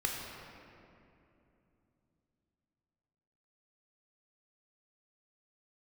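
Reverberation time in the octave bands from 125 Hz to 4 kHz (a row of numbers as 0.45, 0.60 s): 4.3, 4.0, 3.1, 2.6, 2.3, 1.6 s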